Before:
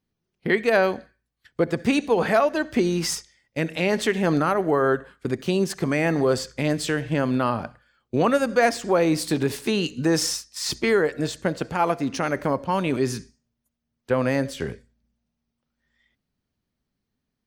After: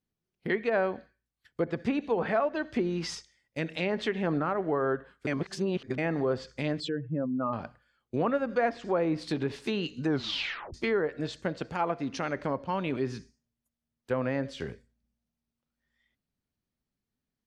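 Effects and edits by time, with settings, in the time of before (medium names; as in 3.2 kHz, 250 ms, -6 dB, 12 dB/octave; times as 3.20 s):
5.27–5.98 s: reverse
6.80–7.53 s: spectral contrast enhancement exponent 2.2
10.06 s: tape stop 0.68 s
whole clip: low-pass that closes with the level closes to 1.7 kHz, closed at -16.5 dBFS; dynamic bell 3.8 kHz, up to +4 dB, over -42 dBFS, Q 1.2; trim -7.5 dB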